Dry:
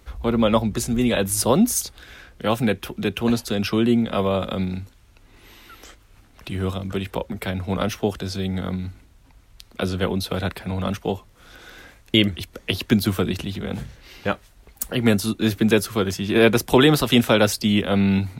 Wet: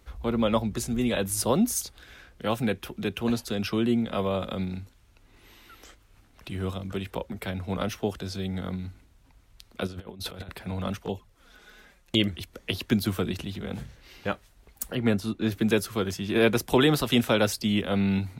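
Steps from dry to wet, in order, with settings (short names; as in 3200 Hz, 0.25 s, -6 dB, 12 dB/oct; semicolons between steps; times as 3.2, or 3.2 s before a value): 9.87–10.49 negative-ratio compressor -31 dBFS, ratio -0.5; 11.05–12.2 envelope flanger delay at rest 6.6 ms, full sweep at -20 dBFS; 14.95–15.52 high shelf 4900 Hz -12 dB; gain -6 dB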